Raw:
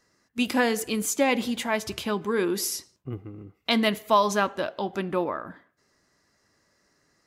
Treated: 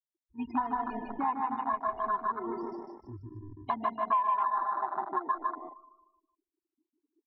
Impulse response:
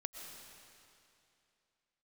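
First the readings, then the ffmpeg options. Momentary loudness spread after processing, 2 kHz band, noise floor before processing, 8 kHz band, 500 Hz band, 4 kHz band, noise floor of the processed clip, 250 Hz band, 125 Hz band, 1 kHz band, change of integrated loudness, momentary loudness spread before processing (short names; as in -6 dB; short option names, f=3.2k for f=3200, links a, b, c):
17 LU, -14.5 dB, -69 dBFS, under -40 dB, -14.0 dB, under -25 dB, under -85 dBFS, -11.5 dB, -11.5 dB, +0.5 dB, -6.0 dB, 15 LU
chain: -filter_complex "[0:a]aeval=exprs='val(0)+0.5*0.0316*sgn(val(0))':c=same,aecho=1:1:2.8:0.83[a];[1:a]atrim=start_sample=2205,afade=t=out:st=0.34:d=0.01,atrim=end_sample=15435[b];[a][b]afir=irnorm=-1:irlink=0,asplit=2[c][d];[d]acrusher=samples=26:mix=1:aa=0.000001,volume=-5dB[e];[c][e]amix=inputs=2:normalize=0,afftfilt=real='re*gte(hypot(re,im),0.126)':imag='im*gte(hypot(re,im),0.126)':win_size=1024:overlap=0.75,equalizer=f=250:t=o:w=0.67:g=5,equalizer=f=1k:t=o:w=0.67:g=9,equalizer=f=4k:t=o:w=0.67:g=-9,asplit=2[f][g];[g]aecho=0:1:152|304|456|608|760:0.668|0.281|0.118|0.0495|0.0208[h];[f][h]amix=inputs=2:normalize=0,afwtdn=0.1,aresample=11025,aresample=44100,lowshelf=f=690:t=q:w=3:g=-11.5,acompressor=threshold=-25dB:ratio=5,volume=-3dB"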